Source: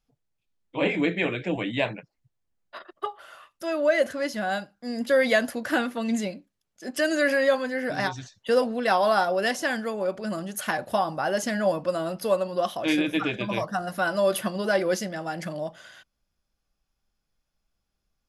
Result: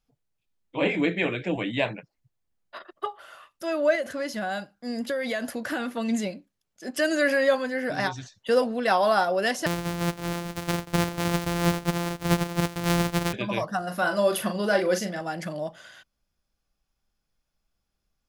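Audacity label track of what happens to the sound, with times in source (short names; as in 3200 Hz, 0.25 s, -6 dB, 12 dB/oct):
3.950000	5.950000	compressor, threshold -25 dBFS
9.660000	13.330000	sample sorter in blocks of 256 samples
13.860000	15.210000	doubler 39 ms -7.5 dB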